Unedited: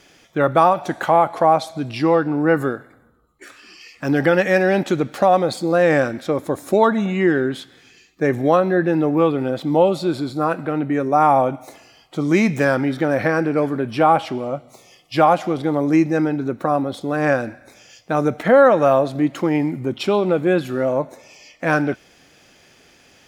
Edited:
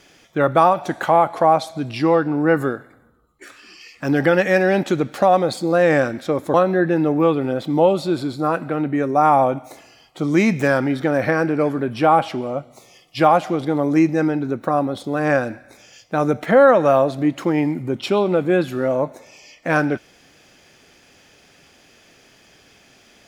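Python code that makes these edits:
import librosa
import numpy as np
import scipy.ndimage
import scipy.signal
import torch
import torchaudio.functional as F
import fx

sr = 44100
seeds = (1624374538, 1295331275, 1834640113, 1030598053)

y = fx.edit(x, sr, fx.cut(start_s=6.54, length_s=1.97), tone=tone)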